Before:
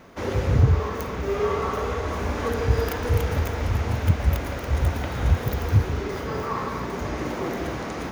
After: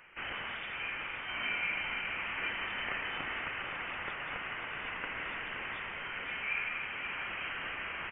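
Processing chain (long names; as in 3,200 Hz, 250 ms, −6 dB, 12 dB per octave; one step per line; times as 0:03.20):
high-pass filter 1,400 Hz 12 dB per octave
voice inversion scrambler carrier 3,500 Hz
on a send: single-tap delay 522 ms −8.5 dB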